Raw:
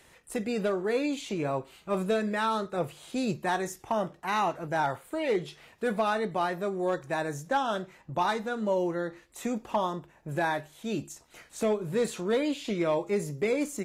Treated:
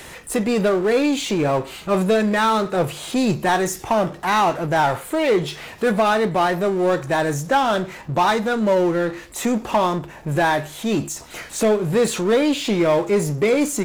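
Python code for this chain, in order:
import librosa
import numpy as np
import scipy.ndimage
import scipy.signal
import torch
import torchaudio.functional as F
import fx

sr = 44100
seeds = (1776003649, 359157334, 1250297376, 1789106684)

y = fx.power_curve(x, sr, exponent=0.7)
y = F.gain(torch.from_numpy(y), 8.5).numpy()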